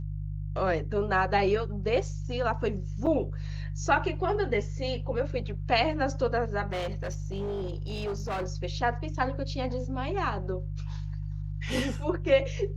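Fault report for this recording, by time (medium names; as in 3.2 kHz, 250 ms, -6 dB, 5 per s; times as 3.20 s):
hum 50 Hz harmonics 3 -34 dBFS
3.06–3.07 s: dropout 6.2 ms
6.70–8.46 s: clipped -28.5 dBFS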